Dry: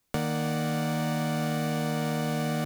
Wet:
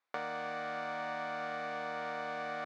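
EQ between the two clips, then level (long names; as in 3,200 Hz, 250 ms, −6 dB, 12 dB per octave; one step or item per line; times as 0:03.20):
high-pass filter 1,000 Hz 12 dB per octave
head-to-tape spacing loss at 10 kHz 40 dB
parametric band 2,900 Hz −6.5 dB 0.26 octaves
+5.0 dB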